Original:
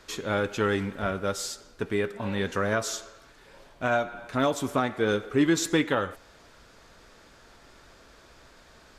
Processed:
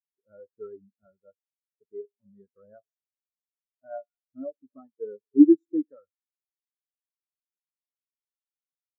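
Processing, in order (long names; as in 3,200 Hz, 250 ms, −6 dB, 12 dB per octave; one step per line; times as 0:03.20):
every bin expanded away from the loudest bin 4 to 1
level +7 dB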